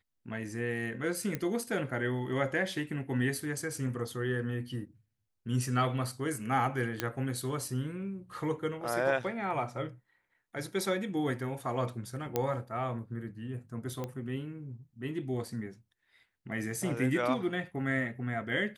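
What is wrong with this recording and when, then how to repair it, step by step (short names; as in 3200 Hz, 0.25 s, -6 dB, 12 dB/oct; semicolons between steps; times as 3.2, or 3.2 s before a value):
1.35 pop -19 dBFS
7 pop -14 dBFS
12.36 pop -15 dBFS
14.04 pop -23 dBFS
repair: de-click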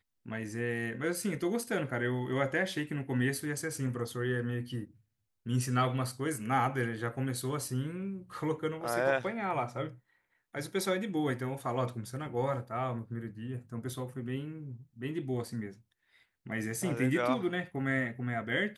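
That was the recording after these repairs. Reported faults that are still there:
none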